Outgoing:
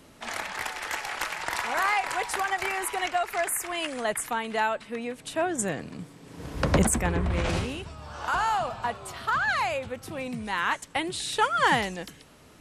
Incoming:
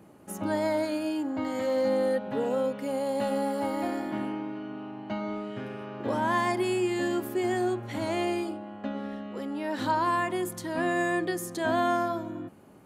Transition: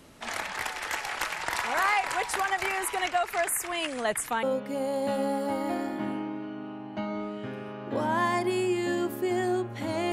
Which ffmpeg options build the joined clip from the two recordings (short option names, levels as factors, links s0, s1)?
-filter_complex "[0:a]apad=whole_dur=10.12,atrim=end=10.12,atrim=end=4.432[s0];[1:a]atrim=start=2.558:end=8.25[s1];[s0][s1]acrossfade=d=0.004:c1=hsin:c2=hsin"